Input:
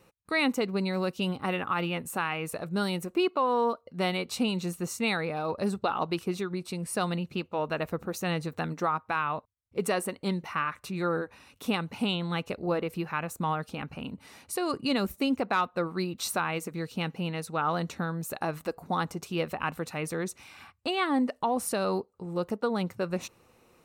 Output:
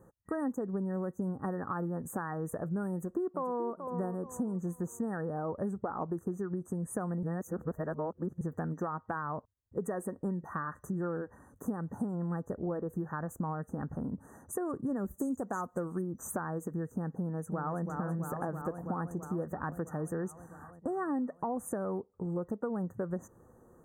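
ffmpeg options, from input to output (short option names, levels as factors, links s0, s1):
-filter_complex "[0:a]asplit=2[s0][s1];[s1]afade=t=in:st=2.91:d=0.01,afade=t=out:st=3.72:d=0.01,aecho=0:1:430|860|1290|1720:0.251189|0.087916|0.0307706|0.0107697[s2];[s0][s2]amix=inputs=2:normalize=0,asplit=3[s3][s4][s5];[s3]afade=t=out:st=15.18:d=0.02[s6];[s4]highshelf=f=4800:t=q:w=3:g=13.5,afade=t=in:st=15.18:d=0.02,afade=t=out:st=16:d=0.02[s7];[s5]afade=t=in:st=16:d=0.02[s8];[s6][s7][s8]amix=inputs=3:normalize=0,asplit=2[s9][s10];[s10]afade=t=in:st=17.18:d=0.01,afade=t=out:st=17.82:d=0.01,aecho=0:1:330|660|990|1320|1650|1980|2310|2640|2970|3300|3630|3960:0.473151|0.354863|0.266148|0.199611|0.149708|0.112281|0.0842108|0.0631581|0.0473686|0.0355264|0.0266448|0.0199836[s11];[s9][s11]amix=inputs=2:normalize=0,asplit=3[s12][s13][s14];[s12]atrim=end=7.232[s15];[s13]atrim=start=7.228:end=8.412,asetpts=PTS-STARTPTS,areverse[s16];[s14]atrim=start=8.408[s17];[s15][s16]acrossfade=d=0.004:c1=hsin:c2=hsin[s18];[s18][s17]acrossfade=d=0.004:c1=hsin:c2=hsin,afftfilt=real='re*(1-between(b*sr/4096,1900,6000))':imag='im*(1-between(b*sr/4096,1900,6000))':win_size=4096:overlap=0.75,tiltshelf=f=760:g=5.5,acompressor=threshold=0.0251:ratio=5"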